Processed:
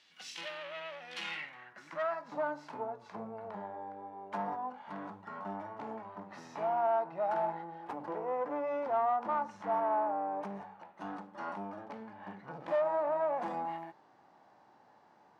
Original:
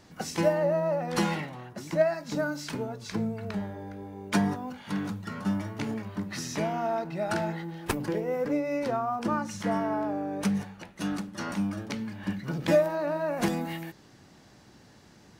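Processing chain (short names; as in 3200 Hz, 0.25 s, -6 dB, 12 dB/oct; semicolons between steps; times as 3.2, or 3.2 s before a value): tube stage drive 28 dB, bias 0.55; band-pass sweep 3100 Hz -> 860 Hz, 1.13–2.41; harmonic-percussive split percussive -7 dB; gain +7.5 dB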